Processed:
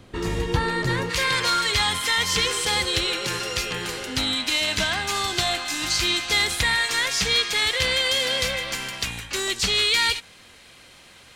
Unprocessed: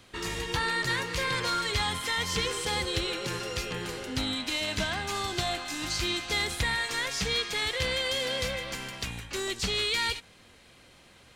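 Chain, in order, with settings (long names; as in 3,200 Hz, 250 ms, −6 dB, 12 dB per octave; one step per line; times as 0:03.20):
tilt shelving filter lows +6.5 dB, about 890 Hz, from 0:01.09 lows −3.5 dB
level +5.5 dB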